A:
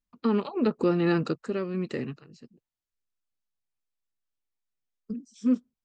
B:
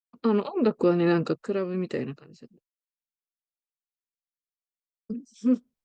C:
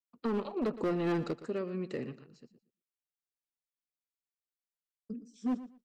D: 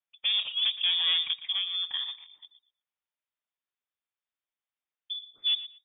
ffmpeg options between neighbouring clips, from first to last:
ffmpeg -i in.wav -af "equalizer=frequency=550:width_type=o:width=1.2:gain=4.5,agate=range=-33dB:threshold=-55dB:ratio=3:detection=peak" out.wav
ffmpeg -i in.wav -af "volume=19.5dB,asoftclip=hard,volume=-19.5dB,aecho=1:1:117|234:0.178|0.0338,volume=-7.5dB" out.wav
ffmpeg -i in.wav -af "lowpass=frequency=3100:width_type=q:width=0.5098,lowpass=frequency=3100:width_type=q:width=0.6013,lowpass=frequency=3100:width_type=q:width=0.9,lowpass=frequency=3100:width_type=q:width=2.563,afreqshift=-3700,volume=4.5dB" out.wav

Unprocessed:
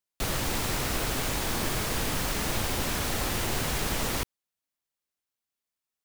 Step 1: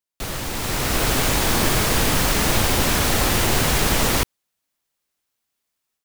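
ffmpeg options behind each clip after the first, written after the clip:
ffmpeg -i in.wav -af "dynaudnorm=framelen=540:gausssize=3:maxgain=10.5dB" out.wav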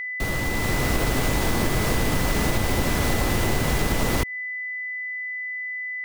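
ffmpeg -i in.wav -af "tiltshelf=frequency=970:gain=4,aeval=exprs='val(0)+0.0398*sin(2*PI*2000*n/s)':channel_layout=same,acompressor=threshold=-18dB:ratio=6" out.wav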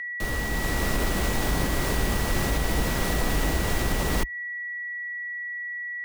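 ffmpeg -i in.wav -af "afreqshift=-63,volume=-2.5dB" out.wav

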